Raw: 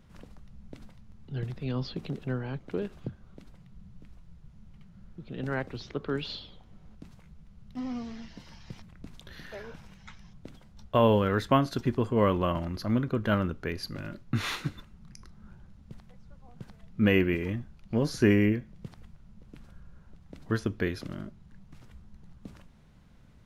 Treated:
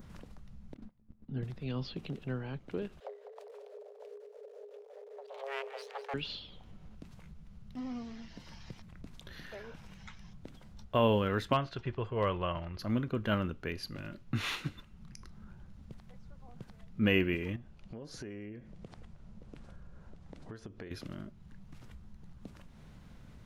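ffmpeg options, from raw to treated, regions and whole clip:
-filter_complex "[0:a]asettb=1/sr,asplit=3[a][b][c];[a]atrim=end=0.744[d];[b]atrim=start=0.74:end=1.43,asetpts=PTS-STARTPTS,afade=t=in:d=0.004:c=qsin,afade=t=out:st=0.686:d=0.004:c=qsin,lowpass=f=1.9k:p=1,equalizer=f=240:t=o:w=0.5:g=12,agate=range=-21dB:threshold=-45dB:ratio=16:release=100:detection=peak[e];[c]atrim=start=1.426[f];[d][e]acrossfade=d=0.004:c1=hsin:c2=qsin[g];[g][f]acrossfade=d=0.004:c1=qsin:c2=hsin,asettb=1/sr,asplit=3[h][i][j];[h]atrim=end=3.004[k];[i]atrim=start=3:end=6.14,asetpts=PTS-STARTPTS,afade=t=in:d=0.004:c=qsin,afade=t=out:st=3.136:d=0.004:c=qsin,aeval=exprs='max(val(0),0)':c=same,asplit=7[l][m][n][o][p][q][r];[m]adelay=200,afreqshift=-36,volume=-11.5dB[s];[n]adelay=400,afreqshift=-72,volume=-16.9dB[t];[o]adelay=600,afreqshift=-108,volume=-22.2dB[u];[p]adelay=800,afreqshift=-144,volume=-27.6dB[v];[q]adelay=1000,afreqshift=-180,volume=-32.9dB[w];[r]adelay=1200,afreqshift=-216,volume=-38.3dB[x];[l][s][t][u][v][w][x]amix=inputs=7:normalize=0,atrim=end_sample=138474,afreqshift=410[y];[j]atrim=start=6.136[z];[k][y]acrossfade=d=0.004:c1=hsin:c2=qsin[aa];[aa][z]acrossfade=d=0.004:c1=qsin:c2=hsin,asettb=1/sr,asplit=3[ab][ac][ad];[ab]atrim=end=11.534[ae];[ac]atrim=start=11.53:end=12.79,asetpts=PTS-STARTPTS,afade=t=in:d=0.004:c=qsin,afade=t=out:st=1.256:d=0.004:c=qsin,lowpass=3.5k,equalizer=f=250:w=2:g=-13,asoftclip=type=hard:threshold=-15dB[af];[ad]atrim=start=12.786[ag];[ae][af]acrossfade=d=0.004:c1=hsin:c2=qsin[ah];[ah][ag]acrossfade=d=0.004:c1=qsin:c2=hsin,asettb=1/sr,asplit=3[ai][aj][ak];[ai]atrim=end=17.564[al];[aj]atrim=start=17.56:end=20.91,asetpts=PTS-STARTPTS,afade=t=in:d=0.004:c=qsin,afade=t=out:st=3.346:d=0.004:c=qsin,lowpass=f=10k:w=0.5412,lowpass=f=10k:w=1.3066,equalizer=f=540:t=o:w=1.5:g=5.5,acompressor=threshold=-40dB:ratio=4:attack=3.2:release=140:knee=1:detection=peak[am];[ak]atrim=start=20.906[an];[al][am]acrossfade=d=0.004:c1=hsin:c2=qsin[ao];[ao][an]acrossfade=d=0.004:c1=qsin:c2=hsin,adynamicequalizer=threshold=0.002:dfrequency=2800:dqfactor=2.7:tfrequency=2800:tqfactor=2.7:attack=5:release=100:ratio=0.375:range=3:mode=boostabove:tftype=bell,acompressor=mode=upward:threshold=-37dB:ratio=2.5,volume=-5dB"

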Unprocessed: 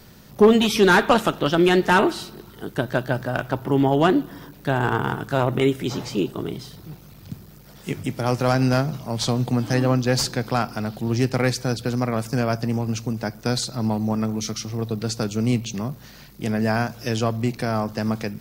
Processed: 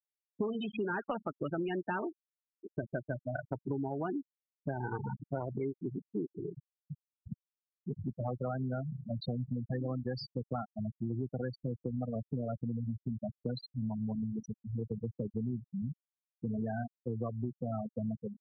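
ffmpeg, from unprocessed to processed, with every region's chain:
-filter_complex "[0:a]asettb=1/sr,asplit=3[a][b][c];[a]atrim=end=6.914[d];[b]atrim=start=6.91:end=9.8,asetpts=PTS-STARTPTS,afade=t=in:d=0.004:c=qsin,afade=t=out:st=2.886:d=0.004:c=qsin,bandreject=f=290:w=8,acompressor=mode=upward:threshold=-24dB:ratio=2.5:attack=3.2:release=140:knee=2.83:detection=peak[e];[c]atrim=start=9.796[f];[d][e]acrossfade=d=0.004:c1=hsin:c2=qsin[g];[g][f]acrossfade=d=0.004:c1=qsin:c2=hsin,afftfilt=real='re*gte(hypot(re,im),0.251)':imag='im*gte(hypot(re,im),0.251)':win_size=1024:overlap=0.75,acompressor=threshold=-26dB:ratio=10,volume=-6dB"

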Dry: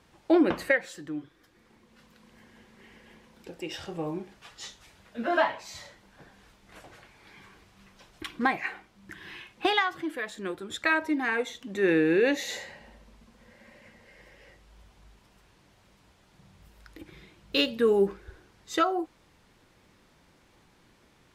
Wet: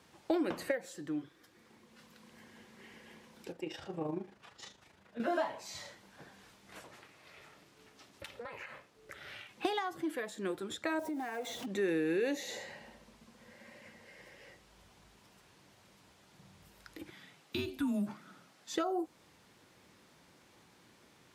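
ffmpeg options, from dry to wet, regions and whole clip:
-filter_complex "[0:a]asettb=1/sr,asplit=3[a][b][c];[a]atrim=end=3.524[d];[b]atrim=start=3.52:end=5.2,asetpts=PTS-STARTPTS,afade=t=in:d=0.004:c=qsin,afade=t=out:st=1.676:d=0.004:c=qsin,highshelf=f=3.1k:g=-11.5,tremolo=f=26:d=0.571[e];[c]atrim=start=5.196[f];[d][e]acrossfade=d=0.004:c1=hsin:c2=qsin[g];[g][f]acrossfade=d=0.004:c1=qsin:c2=hsin,asettb=1/sr,asplit=3[h][i][j];[h]atrim=end=6.844[k];[i]atrim=start=6.84:end=9.49,asetpts=PTS-STARTPTS,afade=t=in:d=0.004:c=qsin,afade=t=out:st=2.646:d=0.004:c=qsin,aeval=exprs='val(0)*sin(2*PI*240*n/s)':c=same,acompressor=threshold=-38dB:ratio=12:attack=3.2:release=140:knee=1:detection=peak[l];[j]atrim=start=9.486[m];[k][l]acrossfade=d=0.004:c1=hsin:c2=qsin[n];[n][m]acrossfade=d=0.004:c1=qsin:c2=hsin,asettb=1/sr,asplit=3[o][p][q];[o]atrim=end=10.994[r];[p]atrim=start=10.99:end=11.66,asetpts=PTS-STARTPTS,afade=t=in:d=0.004:c=qsin,afade=t=out:st=0.666:d=0.004:c=qsin,aeval=exprs='val(0)+0.5*0.0126*sgn(val(0))':c=same,equalizer=f=700:t=o:w=0.44:g=11,acompressor=threshold=-34dB:ratio=5:attack=3.2:release=140:knee=1:detection=peak[s];[q]atrim=start=11.656[t];[r][s]acrossfade=d=0.004:c1=hsin:c2=qsin[u];[u][t]acrossfade=d=0.004:c1=qsin:c2=hsin,asettb=1/sr,asplit=3[v][w][x];[v]atrim=end=17.104[y];[w]atrim=start=17.1:end=18.76,asetpts=PTS-STARTPTS,afade=t=in:d=0.004:c=qsin,afade=t=out:st=1.656:d=0.004:c=qsin,highpass=f=340:w=0.5412,highpass=f=340:w=1.3066,acompressor=threshold=-27dB:ratio=2:attack=3.2:release=140:knee=1:detection=peak,afreqshift=-190[z];[x]atrim=start=18.756[aa];[y][z]acrossfade=d=0.004:c1=hsin:c2=qsin[ab];[ab][aa]acrossfade=d=0.004:c1=qsin:c2=hsin,highpass=96,bass=f=250:g=-1,treble=f=4k:g=3,acrossover=split=860|5900[ac][ad][ae];[ac]acompressor=threshold=-30dB:ratio=4[af];[ad]acompressor=threshold=-43dB:ratio=4[ag];[ae]acompressor=threshold=-51dB:ratio=4[ah];[af][ag][ah]amix=inputs=3:normalize=0,volume=-1dB"

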